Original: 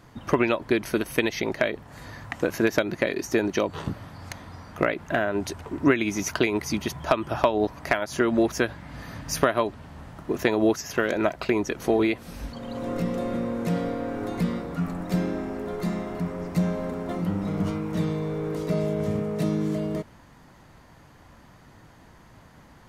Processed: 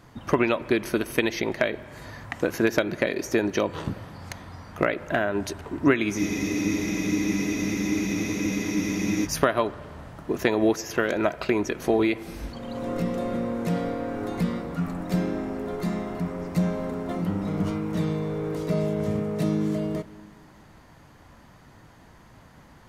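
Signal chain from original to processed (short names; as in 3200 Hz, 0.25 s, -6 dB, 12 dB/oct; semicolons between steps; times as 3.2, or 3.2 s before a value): spring tank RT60 2.1 s, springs 38/44/48 ms, chirp 55 ms, DRR 16.5 dB; spectral freeze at 6.21, 3.05 s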